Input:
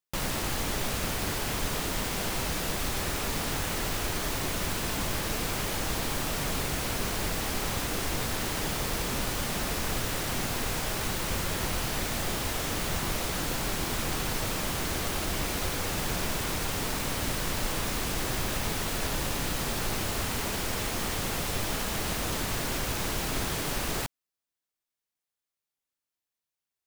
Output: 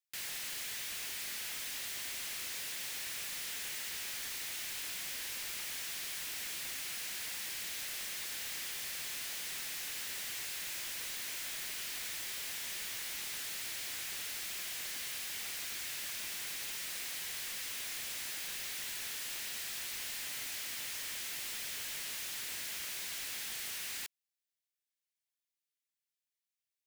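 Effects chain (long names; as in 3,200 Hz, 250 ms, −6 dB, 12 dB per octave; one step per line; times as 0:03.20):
Butterworth high-pass 1,700 Hz 36 dB per octave
wave folding −33 dBFS
level −3 dB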